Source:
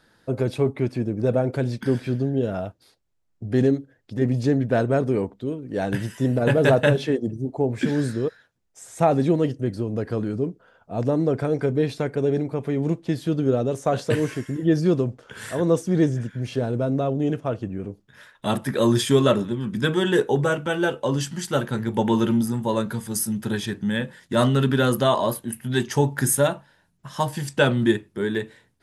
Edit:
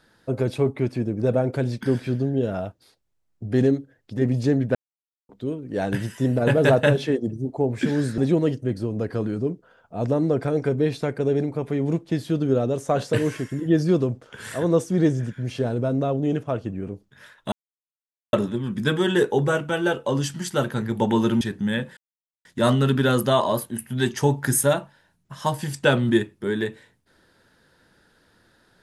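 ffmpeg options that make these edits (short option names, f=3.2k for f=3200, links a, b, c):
-filter_complex "[0:a]asplit=8[a][b][c][d][e][f][g][h];[a]atrim=end=4.75,asetpts=PTS-STARTPTS,afade=t=out:st=4.746:d=0.004:c=hsin[i];[b]atrim=start=4.75:end=5.29,asetpts=PTS-STARTPTS,volume=0[j];[c]atrim=start=5.29:end=8.182,asetpts=PTS-STARTPTS,afade=t=in:d=0.004:c=hsin[k];[d]atrim=start=9.148:end=18.49,asetpts=PTS-STARTPTS,afade=t=out:st=9.338:d=0.004:c=hsin[l];[e]atrim=start=18.49:end=19.3,asetpts=PTS-STARTPTS,volume=0[m];[f]atrim=start=19.3:end=22.382,asetpts=PTS-STARTPTS,afade=t=in:d=0.004:c=hsin[n];[g]atrim=start=23.628:end=24.19,asetpts=PTS-STARTPTS,afade=t=out:st=0.558:d=0.004:c=hsin,apad=pad_dur=0.48[o];[h]atrim=start=24.19,asetpts=PTS-STARTPTS,afade=t=in:d=0.004:c=hsin[p];[i][j][k]concat=n=3:v=0:a=1[q];[l][m][n]concat=n=3:v=0:a=1[r];[q][r]acrossfade=d=0.004:c1=hsin:c2=hsin[s];[o][p]concat=n=2:v=0:a=1[t];[s][t]acrossfade=d=0.004:c1=hsin:c2=hsin"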